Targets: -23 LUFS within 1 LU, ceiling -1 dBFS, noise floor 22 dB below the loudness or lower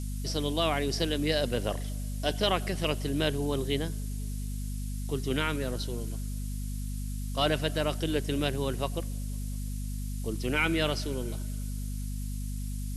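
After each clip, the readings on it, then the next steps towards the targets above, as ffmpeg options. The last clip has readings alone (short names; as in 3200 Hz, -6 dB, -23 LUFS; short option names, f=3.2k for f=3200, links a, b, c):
hum 50 Hz; harmonics up to 250 Hz; hum level -32 dBFS; noise floor -34 dBFS; noise floor target -54 dBFS; loudness -31.5 LUFS; peak -13.0 dBFS; loudness target -23.0 LUFS
-> -af "bandreject=f=50:t=h:w=4,bandreject=f=100:t=h:w=4,bandreject=f=150:t=h:w=4,bandreject=f=200:t=h:w=4,bandreject=f=250:t=h:w=4"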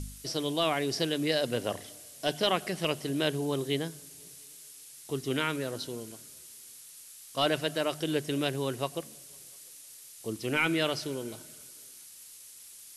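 hum none; noise floor -50 dBFS; noise floor target -53 dBFS
-> -af "afftdn=nr=6:nf=-50"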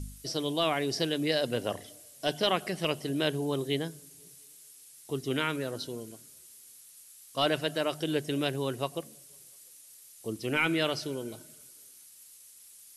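noise floor -54 dBFS; loudness -31.0 LUFS; peak -14.5 dBFS; loudness target -23.0 LUFS
-> -af "volume=8dB"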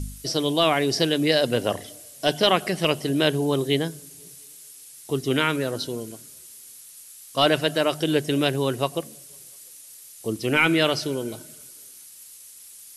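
loudness -23.0 LUFS; peak -6.5 dBFS; noise floor -46 dBFS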